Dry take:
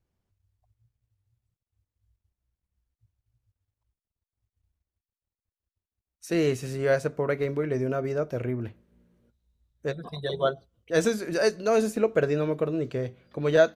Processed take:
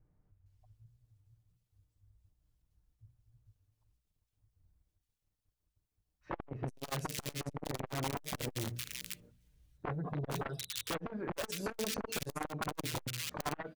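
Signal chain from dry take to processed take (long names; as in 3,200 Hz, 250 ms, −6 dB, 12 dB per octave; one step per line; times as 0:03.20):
0:07.60–0:10.00: one scale factor per block 5 bits
low-shelf EQ 240 Hz +9 dB
mains-hum notches 60/120/180/240 Hz
comb filter 6.6 ms, depth 50%
downward compressor 2.5 to 1, threshold −34 dBFS, peak gain reduction 15 dB
brickwall limiter −26.5 dBFS, peak gain reduction 6.5 dB
wrap-around overflow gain 28.5 dB
multiband delay without the direct sound lows, highs 460 ms, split 2,100 Hz
saturating transformer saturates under 800 Hz
level +1.5 dB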